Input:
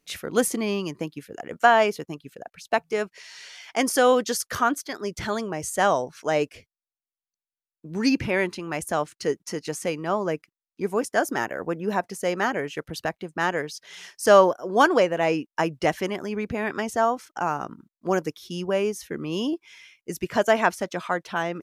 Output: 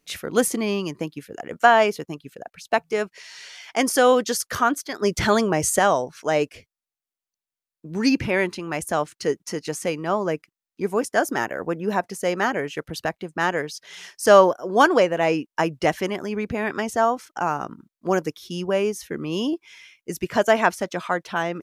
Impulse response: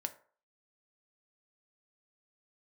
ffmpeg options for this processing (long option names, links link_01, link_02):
-filter_complex "[0:a]asettb=1/sr,asplit=3[link_01][link_02][link_03];[link_01]atrim=end=5.024[link_04];[link_02]atrim=start=5.02:end=5.79,asetpts=PTS-STARTPTS,afade=type=in:duration=0.004:curve=qsin,afade=type=out:start_time=0.766:duration=0.004:curve=qsin,acontrast=81[link_05];[link_03]atrim=start=5.786[link_06];[link_04][link_05]acrossfade=duration=0.004:curve1=hsin:curve2=qsin[link_07];[link_07][link_06]acrossfade=duration=0.004:curve1=qsin:curve2=hsin,volume=2dB"